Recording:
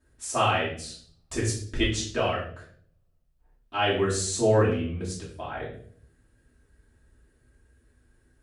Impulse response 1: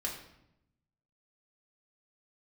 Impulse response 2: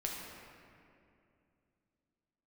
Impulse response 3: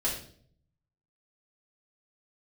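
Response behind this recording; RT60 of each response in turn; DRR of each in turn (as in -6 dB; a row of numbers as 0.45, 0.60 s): 3; 0.80, 2.6, 0.55 s; -3.5, -2.5, -8.0 dB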